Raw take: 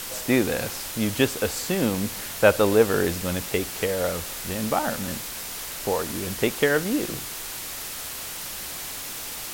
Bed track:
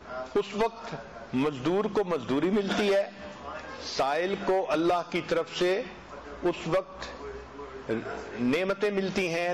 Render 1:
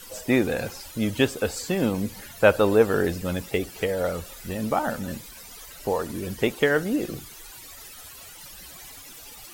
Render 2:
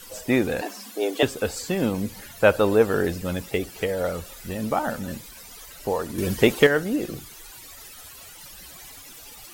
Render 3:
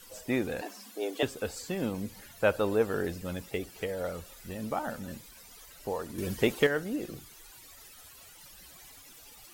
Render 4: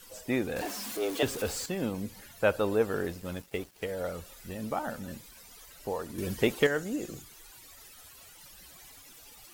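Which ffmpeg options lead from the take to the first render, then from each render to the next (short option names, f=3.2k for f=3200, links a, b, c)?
-af "afftdn=nr=15:nf=-35"
-filter_complex "[0:a]asettb=1/sr,asplit=3[a][b][c];[a]atrim=end=0.614[d];[b]atrim=start=0.61:end=1.23,asetpts=PTS-STARTPTS,afade=t=in:d=0.004:c=qsin,afade=t=out:st=0.616:d=0.004:c=qsin,afreqshift=190[e];[c]atrim=start=1.226[f];[d][e]acrossfade=d=0.004:c1=hsin:c2=qsin[g];[g][f]acrossfade=d=0.004:c1=qsin:c2=hsin,asettb=1/sr,asplit=3[h][i][j];[h]atrim=end=6.184[k];[i]atrim=start=6.18:end=6.67,asetpts=PTS-STARTPTS,afade=t=in:d=0.004:c=qsin,afade=t=out:st=0.486:d=0.004:c=qsin,acontrast=69[l];[j]atrim=start=6.666[m];[k][l]acrossfade=d=0.004:c1=hsin:c2=qsin[n];[n][m]acrossfade=d=0.004:c1=qsin:c2=hsin"
-af "volume=-8.5dB"
-filter_complex "[0:a]asettb=1/sr,asplit=3[a][b][c];[a]atrim=end=0.564[d];[b]atrim=start=0.56:end=1.66,asetpts=PTS-STARTPTS,afade=t=in:d=0.004:c=qsin,afade=t=out:st=1.096:d=0.004:c=qsin,aeval=exprs='val(0)+0.5*0.0178*sgn(val(0))':c=same[e];[c]atrim=start=1.656[f];[d][e]acrossfade=d=0.004:c1=hsin:c2=qsin[g];[g][f]acrossfade=d=0.004:c1=qsin:c2=hsin,asettb=1/sr,asplit=3[h][i][j];[h]atrim=end=2.964[k];[i]atrim=start=2.96:end=3.92,asetpts=PTS-STARTPTS,afade=t=in:d=0.004:c=qsin,afade=t=out:st=0.956:d=0.004:c=qsin,aeval=exprs='sgn(val(0))*max(abs(val(0))-0.00316,0)':c=same[l];[j]atrim=start=3.916[m];[k][l]acrossfade=d=0.004:c1=hsin:c2=qsin[n];[n][m]acrossfade=d=0.004:c1=qsin:c2=hsin,asettb=1/sr,asplit=3[o][p][q];[o]atrim=end=6.654[r];[p]atrim=start=6.65:end=7.22,asetpts=PTS-STARTPTS,afade=t=in:d=0.004:c=qsin,afade=t=out:st=0.566:d=0.004:c=qsin,equalizer=f=7k:t=o:w=0.3:g=10.5[s];[q]atrim=start=7.216[t];[r][s]acrossfade=d=0.004:c1=hsin:c2=qsin[u];[u][t]acrossfade=d=0.004:c1=qsin:c2=hsin"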